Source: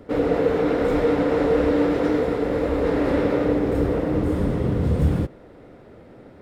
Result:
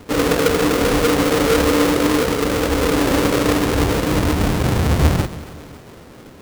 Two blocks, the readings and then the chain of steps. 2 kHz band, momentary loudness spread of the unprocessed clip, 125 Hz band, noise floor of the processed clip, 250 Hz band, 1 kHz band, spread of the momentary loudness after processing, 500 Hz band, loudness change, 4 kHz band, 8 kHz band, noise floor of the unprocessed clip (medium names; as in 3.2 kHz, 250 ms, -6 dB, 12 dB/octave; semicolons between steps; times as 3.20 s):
+10.5 dB, 3 LU, +5.0 dB, -41 dBFS, +3.5 dB, +8.0 dB, 3 LU, +2.5 dB, +4.5 dB, +17.5 dB, no reading, -46 dBFS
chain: square wave that keeps the level; two-band feedback delay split 300 Hz, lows 172 ms, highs 278 ms, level -16 dB